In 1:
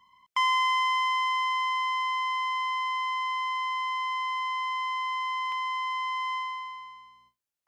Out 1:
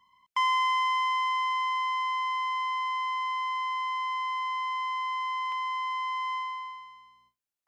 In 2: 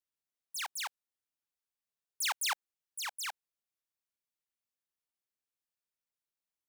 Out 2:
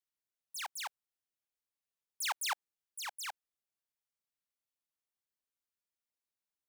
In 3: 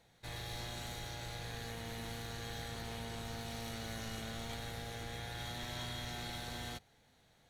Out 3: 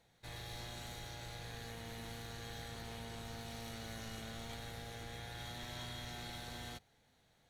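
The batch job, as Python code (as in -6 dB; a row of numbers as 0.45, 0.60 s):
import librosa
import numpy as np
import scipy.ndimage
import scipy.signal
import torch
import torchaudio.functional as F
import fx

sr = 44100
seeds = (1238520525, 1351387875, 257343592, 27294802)

y = fx.dynamic_eq(x, sr, hz=730.0, q=0.74, threshold_db=-42.0, ratio=4.0, max_db=4)
y = F.gain(torch.from_numpy(y), -3.5).numpy()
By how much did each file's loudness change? -1.0, -3.0, -3.5 LU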